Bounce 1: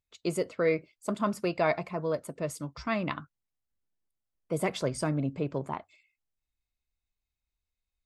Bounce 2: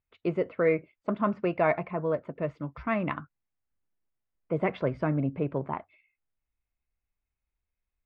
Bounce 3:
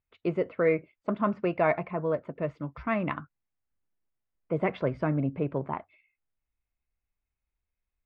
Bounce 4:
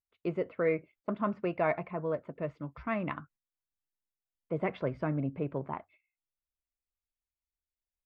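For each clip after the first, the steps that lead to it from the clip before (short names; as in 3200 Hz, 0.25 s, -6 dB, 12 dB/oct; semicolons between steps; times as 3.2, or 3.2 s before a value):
LPF 2500 Hz 24 dB/oct; gain +2 dB
nothing audible
gate -55 dBFS, range -9 dB; gain -4.5 dB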